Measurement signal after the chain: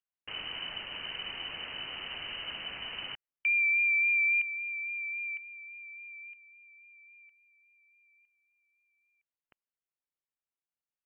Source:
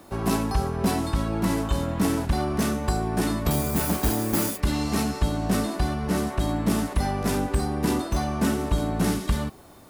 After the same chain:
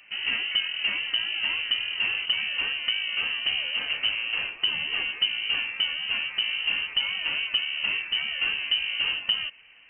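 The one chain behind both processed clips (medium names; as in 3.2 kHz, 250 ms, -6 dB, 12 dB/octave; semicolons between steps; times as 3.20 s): vibrato 3.6 Hz 93 cents; frequency inversion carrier 3 kHz; trim -4 dB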